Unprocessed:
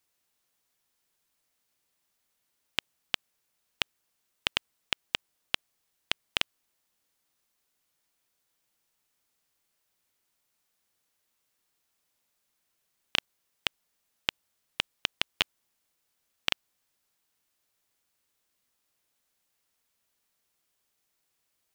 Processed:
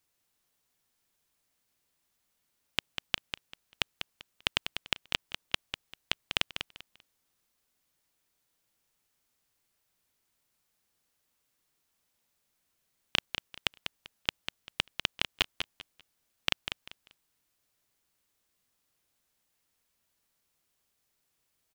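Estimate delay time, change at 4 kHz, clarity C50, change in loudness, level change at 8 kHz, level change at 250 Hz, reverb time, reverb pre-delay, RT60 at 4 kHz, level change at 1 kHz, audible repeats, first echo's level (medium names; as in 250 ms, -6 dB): 196 ms, -0.5 dB, no reverb, -1.5 dB, -0.5 dB, +2.0 dB, no reverb, no reverb, no reverb, 0.0 dB, 3, -8.0 dB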